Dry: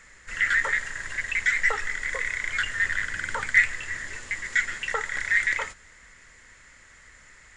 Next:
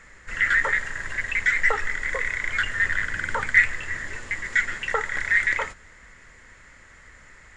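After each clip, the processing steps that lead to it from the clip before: high shelf 2500 Hz -9.5 dB; gain +5.5 dB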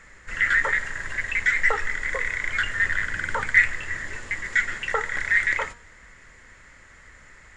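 de-hum 237.6 Hz, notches 39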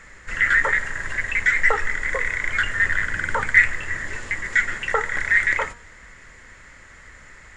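dynamic EQ 4100 Hz, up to -4 dB, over -38 dBFS, Q 0.83; gain +4 dB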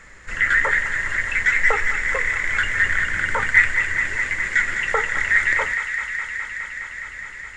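thin delay 0.208 s, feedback 84%, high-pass 1500 Hz, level -6.5 dB

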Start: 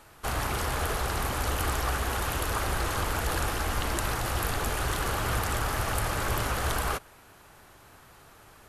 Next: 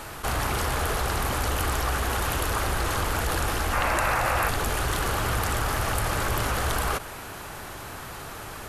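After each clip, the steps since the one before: spectral gain 3.73–4.49, 480–2800 Hz +8 dB; fast leveller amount 50%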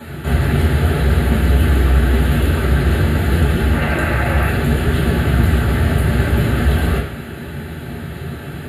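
reverb RT60 0.70 s, pre-delay 3 ms, DRR -4 dB; flange 0.8 Hz, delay 3.1 ms, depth 8.7 ms, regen +81%; fixed phaser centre 2500 Hz, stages 4; gain -2 dB

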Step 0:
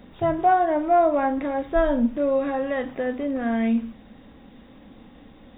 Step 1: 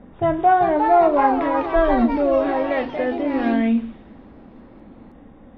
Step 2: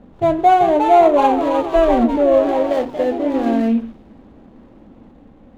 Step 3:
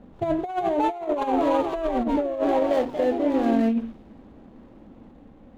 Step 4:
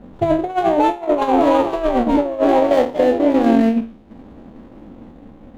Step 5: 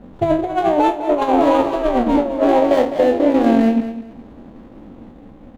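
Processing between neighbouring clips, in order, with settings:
low-pass opened by the level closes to 1300 Hz, open at -18.5 dBFS; echoes that change speed 0.427 s, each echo +3 st, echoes 3, each echo -6 dB; gain +3 dB
median filter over 25 samples; dynamic EQ 520 Hz, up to +6 dB, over -28 dBFS, Q 0.78
negative-ratio compressor -16 dBFS, ratio -0.5; gain -6 dB
spectral trails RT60 0.48 s; transient shaper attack +2 dB, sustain -8 dB; gain +6.5 dB
feedback echo 0.206 s, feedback 24%, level -12 dB

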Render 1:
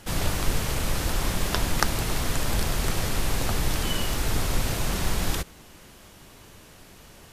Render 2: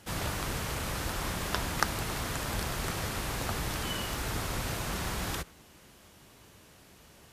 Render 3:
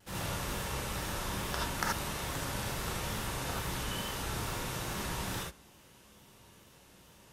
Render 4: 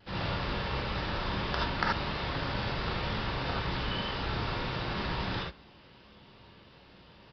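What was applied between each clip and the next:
HPF 47 Hz; dynamic EQ 1300 Hz, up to +4 dB, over -43 dBFS, Q 0.85; gain -6.5 dB
vibrato 2.3 Hz 70 cents; non-linear reverb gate 0.1 s rising, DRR -3.5 dB; gain -7.5 dB
downsampling 11025 Hz; gain +4 dB

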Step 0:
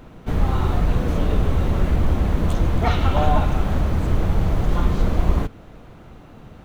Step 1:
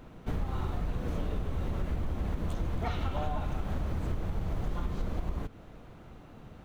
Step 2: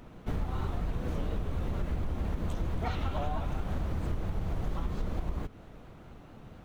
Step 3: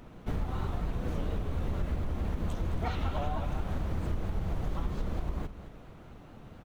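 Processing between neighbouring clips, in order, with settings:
compressor, threshold -21 dBFS, peak gain reduction 11.5 dB; gain -7 dB
shaped vibrato saw up 4.4 Hz, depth 100 cents
echo 0.215 s -13 dB

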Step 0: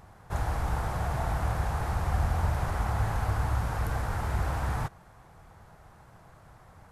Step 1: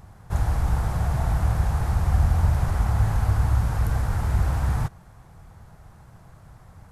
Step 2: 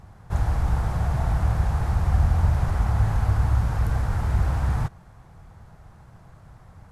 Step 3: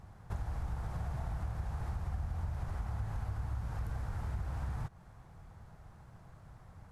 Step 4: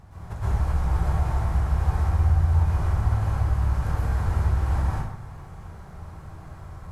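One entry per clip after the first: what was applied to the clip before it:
tone controls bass +8 dB, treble +4 dB
high shelf 8400 Hz -9 dB
compressor 4:1, threshold -29 dBFS, peak gain reduction 12.5 dB; gain -6.5 dB
plate-style reverb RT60 0.88 s, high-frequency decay 0.7×, pre-delay 0.105 s, DRR -9 dB; gain +4 dB

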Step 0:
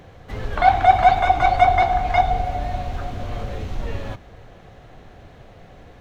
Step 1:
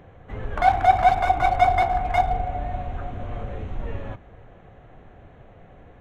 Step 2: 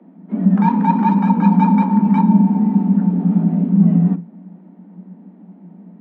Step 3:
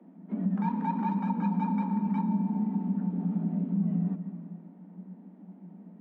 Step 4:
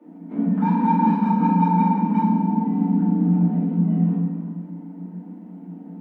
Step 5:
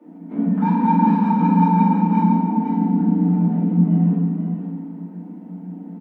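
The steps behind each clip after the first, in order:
Wiener smoothing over 9 samples; gain -3 dB
tilt -4 dB/oct; gate -20 dBFS, range -6 dB; frequency shift +170 Hz; gain -4 dB
on a send at -13 dB: reverb RT60 1.5 s, pre-delay 95 ms; on the sum: compressor 2:1, threshold -23 dBFS, peak gain reduction 9 dB; gain -8 dB
FDN reverb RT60 0.98 s, low-frequency decay 1.55×, high-frequency decay 0.9×, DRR -9 dB
echo 0.503 s -7 dB; gain +1.5 dB

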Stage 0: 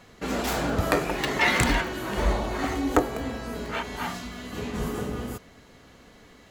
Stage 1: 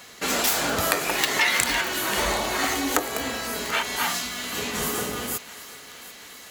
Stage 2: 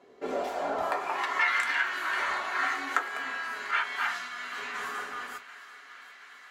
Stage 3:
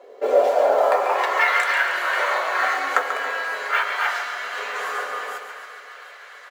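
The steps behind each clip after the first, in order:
tilt +3.5 dB/oct; compressor 4:1, threshold -25 dBFS, peak gain reduction 10.5 dB; thinning echo 0.738 s, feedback 64%, high-pass 840 Hz, level -16 dB; gain +5.5 dB
band-pass sweep 400 Hz -> 1500 Hz, 0.04–1.63; on a send at -2 dB: reverb RT60 0.15 s, pre-delay 3 ms
modulation noise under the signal 30 dB; resonant high-pass 520 Hz, resonance Q 4.9; feedback echo 0.139 s, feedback 59%, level -8.5 dB; gain +5.5 dB

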